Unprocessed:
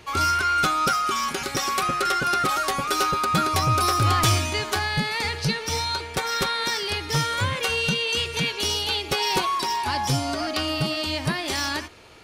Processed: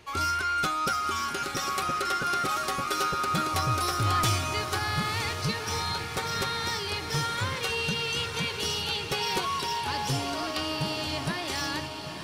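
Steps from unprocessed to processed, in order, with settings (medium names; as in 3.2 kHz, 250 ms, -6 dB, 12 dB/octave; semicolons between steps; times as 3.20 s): echo that smears into a reverb 935 ms, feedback 62%, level -8 dB; trim -6 dB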